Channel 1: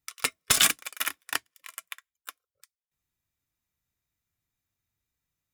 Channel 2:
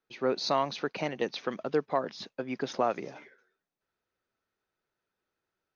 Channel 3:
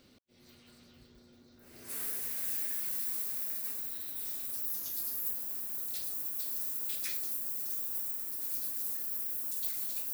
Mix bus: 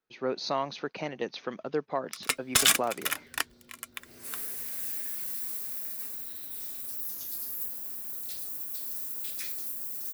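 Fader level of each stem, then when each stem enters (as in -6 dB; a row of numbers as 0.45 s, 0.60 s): -1.0 dB, -2.5 dB, 0.0 dB; 2.05 s, 0.00 s, 2.35 s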